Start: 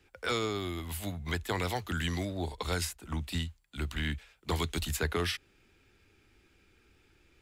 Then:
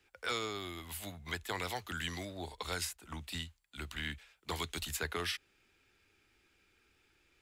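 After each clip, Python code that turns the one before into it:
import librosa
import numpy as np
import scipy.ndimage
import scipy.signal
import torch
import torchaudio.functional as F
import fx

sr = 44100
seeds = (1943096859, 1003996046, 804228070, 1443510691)

y = fx.low_shelf(x, sr, hz=470.0, db=-9.0)
y = F.gain(torch.from_numpy(y), -2.5).numpy()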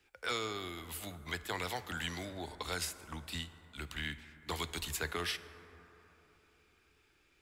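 y = fx.rev_plate(x, sr, seeds[0], rt60_s=3.8, hf_ratio=0.3, predelay_ms=0, drr_db=12.5)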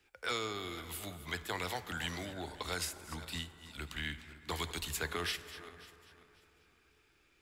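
y = fx.reverse_delay_fb(x, sr, ms=271, feedback_pct=47, wet_db=-14)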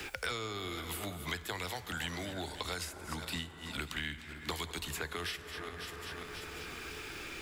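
y = fx.band_squash(x, sr, depth_pct=100)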